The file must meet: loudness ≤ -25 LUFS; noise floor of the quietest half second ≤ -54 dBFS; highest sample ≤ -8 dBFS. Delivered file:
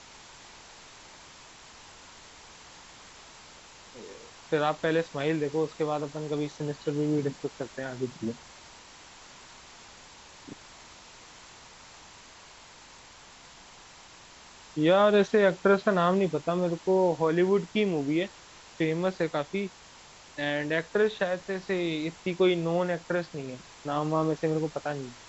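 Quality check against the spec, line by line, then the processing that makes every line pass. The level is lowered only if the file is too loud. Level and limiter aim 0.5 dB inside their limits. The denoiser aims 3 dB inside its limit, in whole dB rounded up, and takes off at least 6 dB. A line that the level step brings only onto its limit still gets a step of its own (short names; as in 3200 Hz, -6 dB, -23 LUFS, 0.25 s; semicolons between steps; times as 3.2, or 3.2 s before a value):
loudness -28.0 LUFS: OK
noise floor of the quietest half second -51 dBFS: fail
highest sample -10.5 dBFS: OK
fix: denoiser 6 dB, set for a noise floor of -51 dBFS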